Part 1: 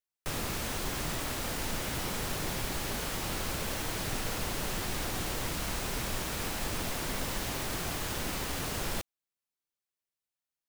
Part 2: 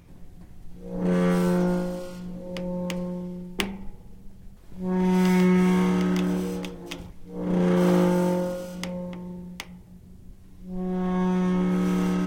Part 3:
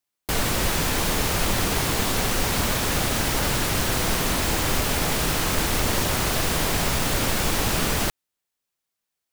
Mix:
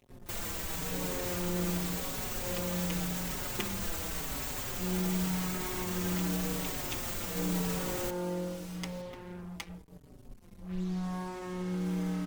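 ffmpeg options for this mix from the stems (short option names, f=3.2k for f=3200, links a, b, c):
-filter_complex "[0:a]volume=-17.5dB[a];[1:a]acompressor=threshold=-27dB:ratio=6,acrusher=bits=6:mix=0:aa=0.5,volume=-2dB[b];[2:a]alimiter=limit=-17dB:level=0:latency=1,aexciter=amount=1.3:drive=6.5:freq=6.5k,volume=-9.5dB[c];[a][b][c]amix=inputs=3:normalize=0,asplit=2[d][e];[e]adelay=5,afreqshift=-0.88[f];[d][f]amix=inputs=2:normalize=1"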